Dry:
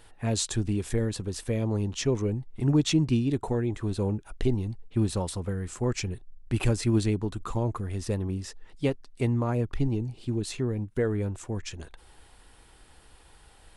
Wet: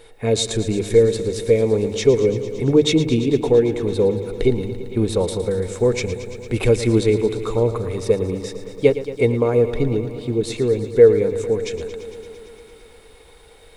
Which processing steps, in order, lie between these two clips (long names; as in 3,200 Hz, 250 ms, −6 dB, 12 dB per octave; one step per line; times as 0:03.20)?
mains-hum notches 50/100/150 Hz
hollow resonant body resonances 460/2,200/3,700 Hz, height 16 dB, ringing for 40 ms
feedback echo at a low word length 113 ms, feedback 80%, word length 10 bits, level −13 dB
level +4 dB